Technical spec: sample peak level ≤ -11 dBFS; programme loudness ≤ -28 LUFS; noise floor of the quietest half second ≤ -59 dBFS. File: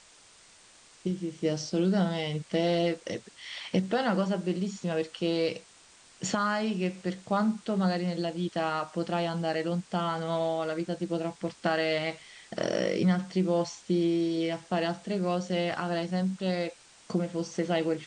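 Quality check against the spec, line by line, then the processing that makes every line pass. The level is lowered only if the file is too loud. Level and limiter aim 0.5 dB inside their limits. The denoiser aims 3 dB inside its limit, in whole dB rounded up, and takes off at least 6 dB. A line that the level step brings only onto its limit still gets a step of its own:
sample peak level -14.5 dBFS: OK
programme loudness -30.0 LUFS: OK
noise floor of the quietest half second -57 dBFS: fail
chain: denoiser 6 dB, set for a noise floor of -57 dBFS

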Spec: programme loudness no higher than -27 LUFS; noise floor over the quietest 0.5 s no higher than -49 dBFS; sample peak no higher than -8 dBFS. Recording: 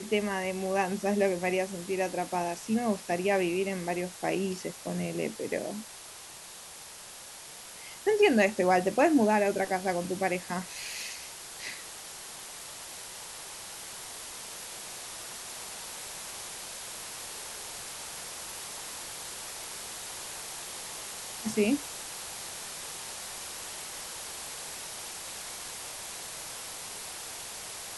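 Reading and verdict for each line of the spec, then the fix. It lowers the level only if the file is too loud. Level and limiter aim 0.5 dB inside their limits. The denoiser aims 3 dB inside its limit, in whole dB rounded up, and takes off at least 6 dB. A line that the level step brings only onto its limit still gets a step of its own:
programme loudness -32.5 LUFS: OK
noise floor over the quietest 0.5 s -47 dBFS: fail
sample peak -10.5 dBFS: OK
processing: denoiser 6 dB, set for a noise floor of -47 dBFS

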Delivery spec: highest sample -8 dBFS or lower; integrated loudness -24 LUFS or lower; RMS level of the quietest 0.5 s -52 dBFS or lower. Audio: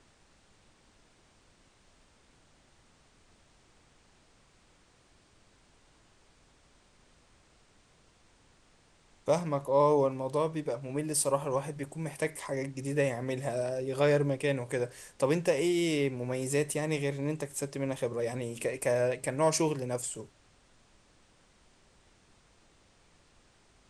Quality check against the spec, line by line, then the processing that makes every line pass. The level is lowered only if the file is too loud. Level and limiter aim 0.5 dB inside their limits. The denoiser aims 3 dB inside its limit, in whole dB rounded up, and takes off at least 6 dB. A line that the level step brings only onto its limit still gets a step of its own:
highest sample -14.0 dBFS: OK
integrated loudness -31.0 LUFS: OK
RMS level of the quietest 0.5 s -64 dBFS: OK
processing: none

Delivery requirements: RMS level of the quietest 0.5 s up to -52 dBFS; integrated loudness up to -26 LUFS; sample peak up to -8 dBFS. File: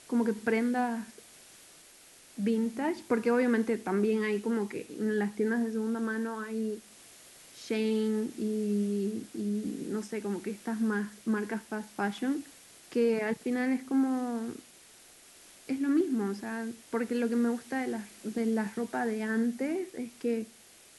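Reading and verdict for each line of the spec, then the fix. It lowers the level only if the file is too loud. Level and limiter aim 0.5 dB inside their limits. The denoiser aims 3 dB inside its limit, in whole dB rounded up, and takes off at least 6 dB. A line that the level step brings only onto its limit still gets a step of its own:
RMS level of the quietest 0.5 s -56 dBFS: OK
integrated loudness -31.5 LUFS: OK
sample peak -16.0 dBFS: OK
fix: none

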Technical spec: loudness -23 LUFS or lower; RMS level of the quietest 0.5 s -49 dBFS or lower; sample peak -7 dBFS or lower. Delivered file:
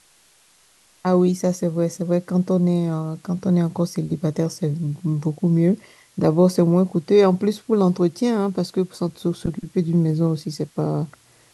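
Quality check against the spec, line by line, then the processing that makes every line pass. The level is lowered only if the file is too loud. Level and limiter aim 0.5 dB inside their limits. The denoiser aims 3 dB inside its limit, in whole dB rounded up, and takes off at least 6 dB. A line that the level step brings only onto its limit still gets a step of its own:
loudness -21.0 LUFS: fail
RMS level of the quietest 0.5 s -56 dBFS: OK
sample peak -4.0 dBFS: fail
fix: gain -2.5 dB; limiter -7.5 dBFS

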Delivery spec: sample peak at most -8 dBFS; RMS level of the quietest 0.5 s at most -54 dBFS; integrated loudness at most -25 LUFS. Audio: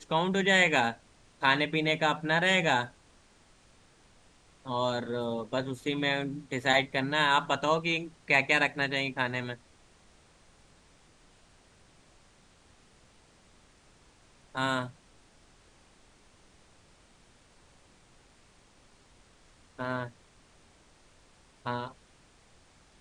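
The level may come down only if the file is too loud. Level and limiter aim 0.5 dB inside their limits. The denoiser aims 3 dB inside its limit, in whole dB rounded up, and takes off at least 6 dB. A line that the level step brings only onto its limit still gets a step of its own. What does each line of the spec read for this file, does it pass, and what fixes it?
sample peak -9.0 dBFS: OK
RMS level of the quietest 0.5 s -61 dBFS: OK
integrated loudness -28.0 LUFS: OK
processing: none

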